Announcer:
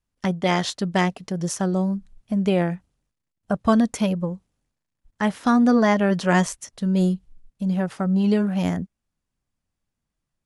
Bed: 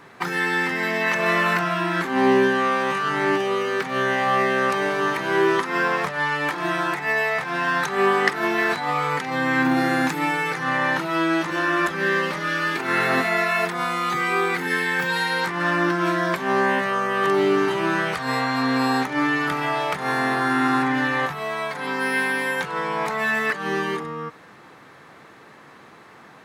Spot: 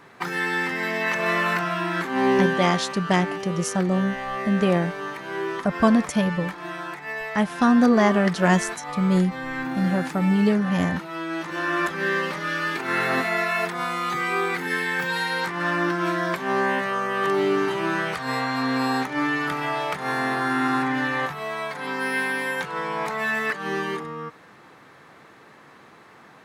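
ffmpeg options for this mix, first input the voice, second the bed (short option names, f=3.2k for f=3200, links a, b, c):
-filter_complex "[0:a]adelay=2150,volume=0dB[a];[1:a]volume=4.5dB,afade=t=out:st=2.43:d=0.43:silence=0.446684,afade=t=in:st=11.26:d=0.51:silence=0.446684[b];[a][b]amix=inputs=2:normalize=0"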